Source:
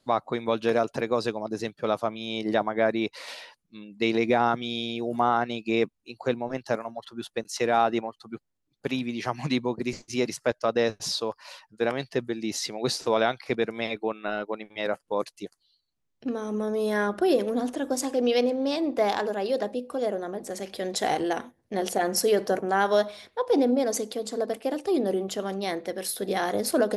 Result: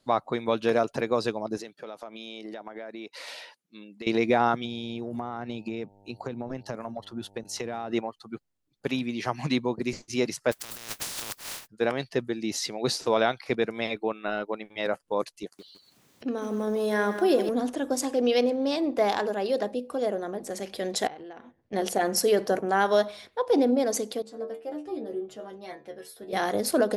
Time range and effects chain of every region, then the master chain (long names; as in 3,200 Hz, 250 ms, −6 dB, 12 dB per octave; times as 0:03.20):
0:01.57–0:04.07: high-pass filter 240 Hz + parametric band 1,100 Hz −4 dB 0.22 octaves + downward compressor 10 to 1, threshold −35 dBFS
0:04.64–0:07.90: low-shelf EQ 270 Hz +11 dB + downward compressor 10 to 1, threshold −29 dBFS + hum with harmonics 100 Hz, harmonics 9, −58 dBFS −2 dB per octave
0:10.51–0:11.66: compressing power law on the bin magnitudes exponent 0.14 + compressor whose output falls as the input rises −37 dBFS
0:15.43–0:17.49: high-pass filter 150 Hz + upward compression, threshold −38 dBFS + feedback echo at a low word length 159 ms, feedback 35%, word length 8 bits, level −10 dB
0:21.07–0:21.73: low-pass filter 3,400 Hz + downward compressor 4 to 1, threshold −43 dBFS
0:24.22–0:26.33: high-shelf EQ 2,600 Hz −8.5 dB + stiff-string resonator 73 Hz, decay 0.32 s, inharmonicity 0.002
whole clip: no processing